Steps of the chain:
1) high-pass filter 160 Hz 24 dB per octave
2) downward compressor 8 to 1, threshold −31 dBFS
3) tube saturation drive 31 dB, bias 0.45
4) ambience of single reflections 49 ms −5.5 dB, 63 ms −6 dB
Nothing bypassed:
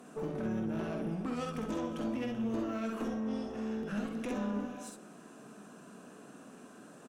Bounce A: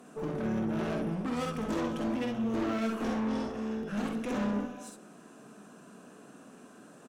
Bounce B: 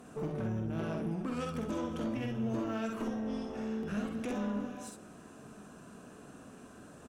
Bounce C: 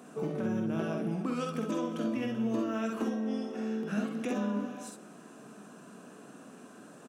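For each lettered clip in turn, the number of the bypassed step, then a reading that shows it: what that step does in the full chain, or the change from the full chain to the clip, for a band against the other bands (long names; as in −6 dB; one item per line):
2, average gain reduction 4.0 dB
1, 125 Hz band +3.5 dB
3, change in crest factor +2.5 dB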